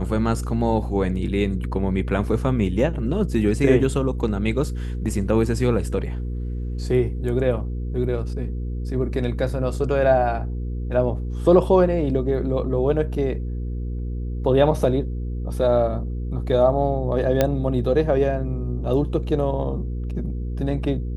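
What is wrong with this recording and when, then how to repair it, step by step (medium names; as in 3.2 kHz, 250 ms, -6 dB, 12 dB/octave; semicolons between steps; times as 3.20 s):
hum 60 Hz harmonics 8 -27 dBFS
17.41 s: pop -5 dBFS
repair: de-click; de-hum 60 Hz, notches 8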